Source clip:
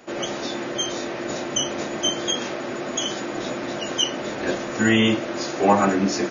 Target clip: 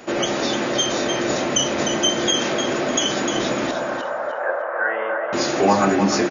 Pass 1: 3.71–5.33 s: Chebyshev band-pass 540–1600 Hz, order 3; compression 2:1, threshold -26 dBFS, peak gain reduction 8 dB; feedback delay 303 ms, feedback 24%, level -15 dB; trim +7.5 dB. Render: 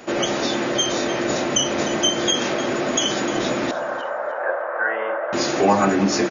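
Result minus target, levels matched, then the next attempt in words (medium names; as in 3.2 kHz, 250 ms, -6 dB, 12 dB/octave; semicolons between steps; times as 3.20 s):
echo-to-direct -7.5 dB
3.71–5.33 s: Chebyshev band-pass 540–1600 Hz, order 3; compression 2:1, threshold -26 dBFS, peak gain reduction 8 dB; feedback delay 303 ms, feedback 24%, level -7.5 dB; trim +7.5 dB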